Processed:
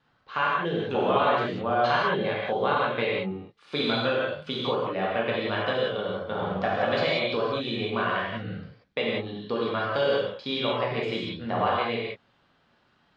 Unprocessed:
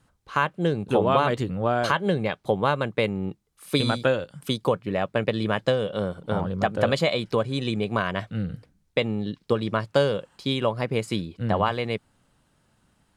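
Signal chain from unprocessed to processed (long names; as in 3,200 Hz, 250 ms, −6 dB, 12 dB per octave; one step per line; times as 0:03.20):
low-pass filter 4,400 Hz 24 dB per octave
low-shelf EQ 65 Hz −10.5 dB
in parallel at 0 dB: downward compressor, threshold −31 dBFS, peak gain reduction 14.5 dB
on the sum: low-shelf EQ 330 Hz −8.5 dB
reverb whose tail is shaped and stops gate 210 ms flat, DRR −5.5 dB
level −7.5 dB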